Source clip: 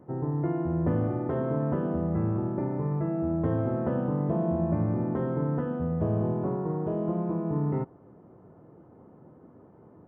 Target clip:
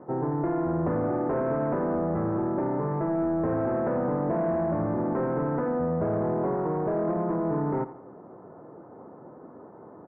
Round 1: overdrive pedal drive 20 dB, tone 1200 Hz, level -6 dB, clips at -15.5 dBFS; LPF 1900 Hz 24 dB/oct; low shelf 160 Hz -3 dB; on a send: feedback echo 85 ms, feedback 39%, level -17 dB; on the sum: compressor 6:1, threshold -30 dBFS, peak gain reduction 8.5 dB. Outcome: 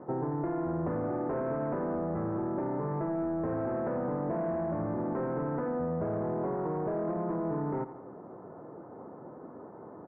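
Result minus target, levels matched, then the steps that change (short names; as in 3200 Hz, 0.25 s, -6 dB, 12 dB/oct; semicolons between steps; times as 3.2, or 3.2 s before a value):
compressor: peak gain reduction +6 dB
change: compressor 6:1, threshold -23 dBFS, peak gain reduction 2.5 dB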